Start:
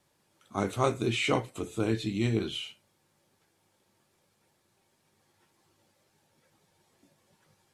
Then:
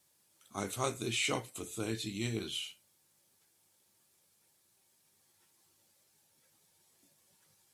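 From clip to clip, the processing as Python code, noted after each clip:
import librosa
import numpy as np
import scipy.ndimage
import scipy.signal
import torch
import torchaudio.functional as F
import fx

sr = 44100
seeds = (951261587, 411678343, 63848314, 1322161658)

y = scipy.signal.lfilter([1.0, -0.8], [1.0], x)
y = F.gain(torch.from_numpy(y), 5.0).numpy()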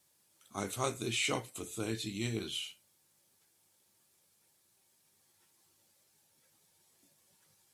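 y = x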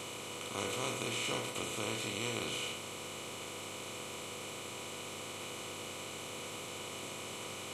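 y = fx.bin_compress(x, sr, power=0.2)
y = fx.comb_fb(y, sr, f0_hz=490.0, decay_s=0.19, harmonics='all', damping=0.0, mix_pct=70)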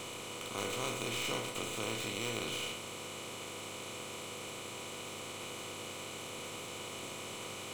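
y = fx.tracing_dist(x, sr, depth_ms=0.037)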